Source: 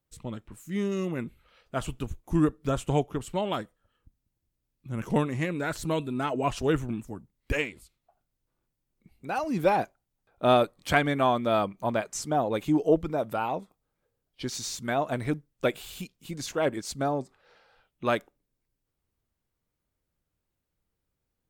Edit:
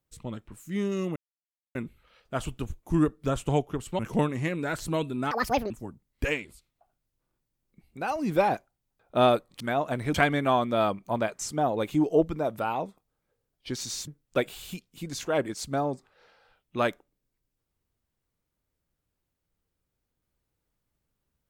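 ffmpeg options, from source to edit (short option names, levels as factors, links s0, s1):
-filter_complex "[0:a]asplit=8[s0][s1][s2][s3][s4][s5][s6][s7];[s0]atrim=end=1.16,asetpts=PTS-STARTPTS,afade=t=out:st=1.156:d=0.004:c=hsin,apad=pad_dur=0.59[s8];[s1]atrim=start=1.16:end=3.402,asetpts=PTS-STARTPTS,afade=t=in:d=0.004:c=hsin[s9];[s2]atrim=start=4.958:end=6.284[s10];[s3]atrim=start=6.28:end=6.98,asetpts=PTS-STARTPTS,asetrate=78498,aresample=44100[s11];[s4]atrim=start=6.976:end=10.882[s12];[s5]atrim=start=14.808:end=15.352[s13];[s6]atrim=start=10.878:end=14.812[s14];[s7]atrim=start=15.348[s15];[s8][s9]concat=n=2:v=0:a=1[s16];[s16][s10]acrossfade=d=0.004:c1=hsin:c2=hsin[s17];[s17][s11]acrossfade=d=0.004:c1=hsin:c2=hsin[s18];[s18][s12]acrossfade=d=0.004:c1=hsin:c2=hsin[s19];[s19][s13]acrossfade=d=0.004:c1=hsin:c2=hsin[s20];[s20][s14]acrossfade=d=0.004:c1=hsin:c2=hsin[s21];[s21][s15]acrossfade=d=0.004:c1=hsin:c2=hsin"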